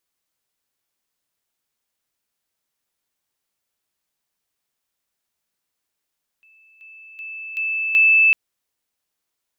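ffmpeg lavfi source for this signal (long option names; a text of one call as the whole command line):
ffmpeg -f lavfi -i "aevalsrc='pow(10,(-50.5+10*floor(t/0.38))/20)*sin(2*PI*2630*t)':duration=1.9:sample_rate=44100" out.wav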